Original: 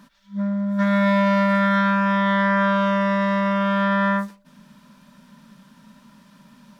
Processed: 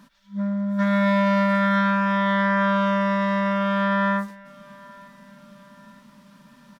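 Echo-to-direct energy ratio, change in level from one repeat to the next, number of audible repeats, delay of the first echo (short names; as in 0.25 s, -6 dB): -22.5 dB, -5.5 dB, 2, 0.902 s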